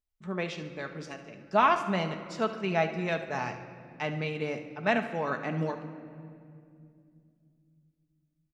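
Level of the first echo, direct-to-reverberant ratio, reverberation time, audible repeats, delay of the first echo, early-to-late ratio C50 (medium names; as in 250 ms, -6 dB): -13.5 dB, 5.0 dB, 2.4 s, 2, 72 ms, 9.0 dB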